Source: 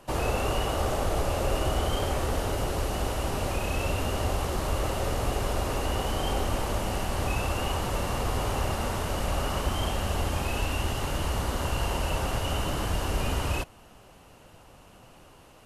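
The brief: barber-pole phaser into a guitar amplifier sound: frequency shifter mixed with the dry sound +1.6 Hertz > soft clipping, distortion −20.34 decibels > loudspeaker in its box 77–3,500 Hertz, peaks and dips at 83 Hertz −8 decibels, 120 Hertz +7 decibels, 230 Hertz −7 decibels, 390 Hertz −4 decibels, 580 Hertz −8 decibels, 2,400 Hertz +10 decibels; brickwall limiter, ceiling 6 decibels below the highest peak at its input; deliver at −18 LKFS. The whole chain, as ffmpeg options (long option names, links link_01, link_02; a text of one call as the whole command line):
ffmpeg -i in.wav -filter_complex "[0:a]alimiter=limit=-20.5dB:level=0:latency=1,asplit=2[link_01][link_02];[link_02]afreqshift=1.6[link_03];[link_01][link_03]amix=inputs=2:normalize=1,asoftclip=threshold=-25dB,highpass=77,equalizer=frequency=83:width_type=q:width=4:gain=-8,equalizer=frequency=120:width_type=q:width=4:gain=7,equalizer=frequency=230:width_type=q:width=4:gain=-7,equalizer=frequency=390:width_type=q:width=4:gain=-4,equalizer=frequency=580:width_type=q:width=4:gain=-8,equalizer=frequency=2400:width_type=q:width=4:gain=10,lowpass=frequency=3500:width=0.5412,lowpass=frequency=3500:width=1.3066,volume=18.5dB" out.wav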